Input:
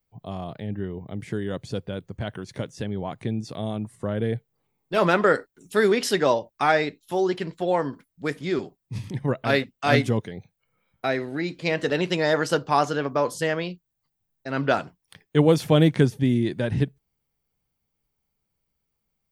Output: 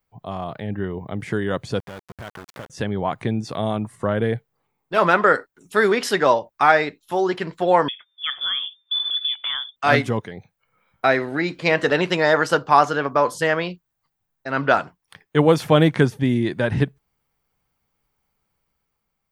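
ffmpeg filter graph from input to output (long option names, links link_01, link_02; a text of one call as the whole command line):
ffmpeg -i in.wav -filter_complex "[0:a]asettb=1/sr,asplit=3[link_01][link_02][link_03];[link_01]atrim=end=1.804[link_04];[link_02]atrim=start=1.8:end=2.7,asetpts=PTS-STARTPTS,afade=type=in:duration=0.004:curve=qsin,afade=type=out:start_time=0.896:duration=0.004:curve=qsin,acompressor=threshold=-46dB:ratio=2:attack=3.2:release=140:knee=1:detection=peak,aeval=exprs='val(0)*gte(abs(val(0)),0.00708)':channel_layout=same[link_05];[link_03]atrim=start=2.696[link_06];[link_04][link_05]acrossfade=duration=0.004:curve1=hsin:curve2=qsin[link_07];[link_07][link_06]acrossfade=duration=0.004:curve1=qsin:curve2=hsin,asettb=1/sr,asplit=3[link_08][link_09][link_10];[link_08]atrim=end=7.884[link_11];[link_09]atrim=start=7.88:end=9.76,asetpts=PTS-STARTPTS,afade=type=in:duration=0.004:curve=qsin,afade=type=out:start_time=1.876:duration=0.004:curve=qsin,asubboost=boost=11.5:cutoff=240,acompressor=threshold=-27dB:ratio=4:attack=3.2:release=140:knee=1:detection=peak,lowpass=frequency=3100:width_type=q:width=0.5098,lowpass=frequency=3100:width_type=q:width=0.6013,lowpass=frequency=3100:width_type=q:width=0.9,lowpass=frequency=3100:width_type=q:width=2.563,afreqshift=-3600[link_12];[link_10]atrim=start=9.756[link_13];[link_11][link_12]acrossfade=duration=0.004:curve1=hsin:curve2=qsin[link_14];[link_14][link_13]acrossfade=duration=0.004:curve1=qsin:curve2=hsin,equalizer=frequency=1200:width=0.68:gain=8.5,dynaudnorm=framelen=100:gausssize=13:maxgain=3.5dB" out.wav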